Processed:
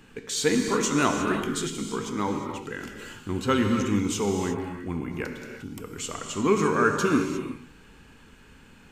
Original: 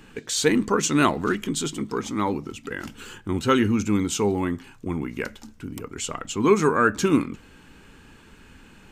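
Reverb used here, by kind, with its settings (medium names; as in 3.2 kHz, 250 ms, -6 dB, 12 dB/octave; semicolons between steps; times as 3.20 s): gated-style reverb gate 380 ms flat, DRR 3 dB; trim -4 dB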